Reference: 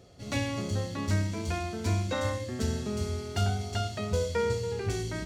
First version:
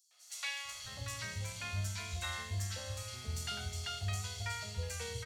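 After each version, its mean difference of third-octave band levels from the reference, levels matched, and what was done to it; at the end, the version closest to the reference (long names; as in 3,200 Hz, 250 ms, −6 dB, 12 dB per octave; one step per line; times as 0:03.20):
10.5 dB: guitar amp tone stack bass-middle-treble 10-0-10
three-band delay without the direct sound highs, mids, lows 110/650 ms, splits 740/5,400 Hz
level +2 dB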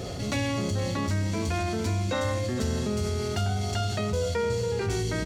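3.0 dB: on a send: single-tap delay 462 ms −15 dB
on the sum: envelope flattener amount 70%
level −1.5 dB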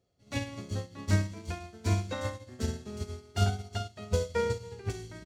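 6.0 dB: on a send: single-tap delay 223 ms −19 dB
on the sum: expander for the loud parts 2.5 to 1, over −40 dBFS
level +3.5 dB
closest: second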